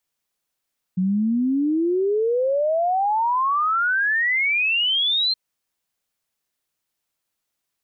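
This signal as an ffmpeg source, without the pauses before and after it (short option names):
-f lavfi -i "aevalsrc='0.133*clip(min(t,4.37-t)/0.01,0,1)*sin(2*PI*180*4.37/log(4200/180)*(exp(log(4200/180)*t/4.37)-1))':d=4.37:s=44100"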